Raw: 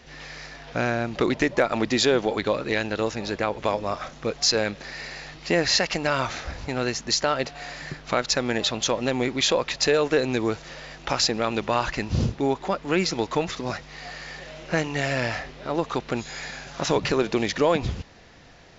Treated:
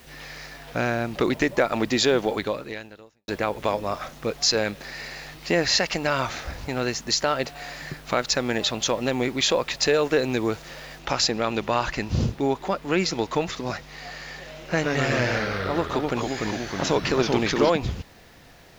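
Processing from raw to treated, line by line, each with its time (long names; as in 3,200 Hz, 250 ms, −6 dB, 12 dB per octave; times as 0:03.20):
0:02.34–0:03.28: fade out quadratic
0:10.99: noise floor change −56 dB −63 dB
0:14.63–0:17.70: delay with pitch and tempo change per echo 112 ms, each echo −2 semitones, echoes 3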